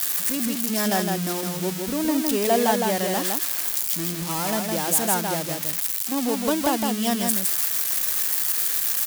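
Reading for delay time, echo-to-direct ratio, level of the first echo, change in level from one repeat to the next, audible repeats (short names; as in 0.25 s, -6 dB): 0.16 s, -4.0 dB, -4.0 dB, no steady repeat, 1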